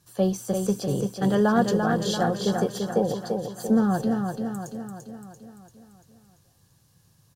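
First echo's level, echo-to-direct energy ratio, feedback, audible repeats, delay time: -5.0 dB, -3.5 dB, 54%, 6, 0.341 s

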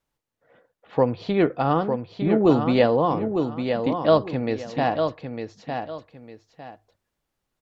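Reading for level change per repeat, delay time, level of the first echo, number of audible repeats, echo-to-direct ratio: -11.5 dB, 0.904 s, -6.5 dB, 2, -6.0 dB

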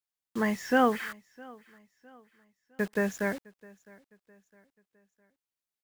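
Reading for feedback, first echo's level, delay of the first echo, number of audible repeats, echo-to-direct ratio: 42%, -24.0 dB, 0.659 s, 2, -23.0 dB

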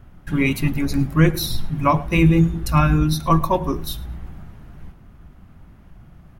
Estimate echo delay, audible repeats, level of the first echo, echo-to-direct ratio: 0.107 s, 2, -22.0 dB, -22.0 dB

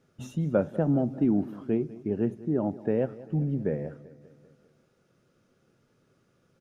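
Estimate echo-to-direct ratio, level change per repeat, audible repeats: -16.5 dB, -4.5 dB, 4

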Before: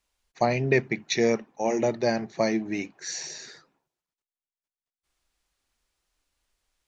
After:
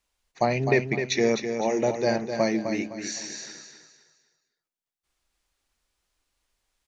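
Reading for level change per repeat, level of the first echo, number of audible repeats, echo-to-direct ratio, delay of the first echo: -9.5 dB, -7.5 dB, 3, -7.0 dB, 0.256 s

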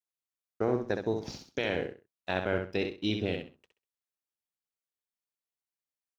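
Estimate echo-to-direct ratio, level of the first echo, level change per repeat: -6.0 dB, -6.0 dB, -13.0 dB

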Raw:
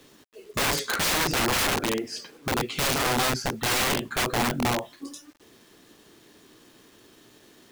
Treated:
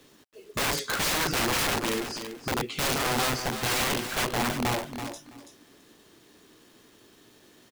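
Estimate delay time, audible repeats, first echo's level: 0.331 s, 2, -9.0 dB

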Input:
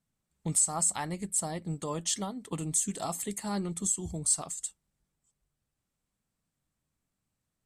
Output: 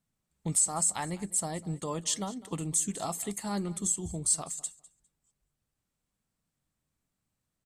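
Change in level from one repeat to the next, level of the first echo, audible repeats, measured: -15.0 dB, -20.0 dB, 2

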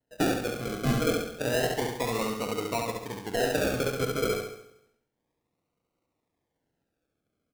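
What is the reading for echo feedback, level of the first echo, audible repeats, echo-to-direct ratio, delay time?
no steady repeat, -3.5 dB, 6, -2.5 dB, 69 ms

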